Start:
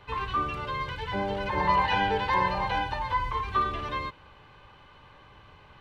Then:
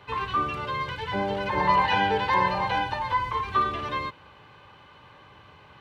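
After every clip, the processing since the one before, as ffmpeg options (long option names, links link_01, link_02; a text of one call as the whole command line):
ffmpeg -i in.wav -af "highpass=88,volume=2.5dB" out.wav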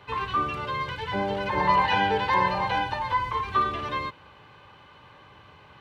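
ffmpeg -i in.wav -af anull out.wav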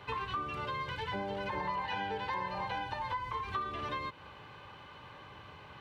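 ffmpeg -i in.wav -af "acompressor=threshold=-35dB:ratio=5" out.wav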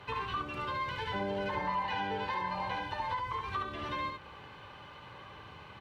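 ffmpeg -i in.wav -af "aecho=1:1:71:0.631" -ar 48000 -c:a libopus -b:a 48k out.opus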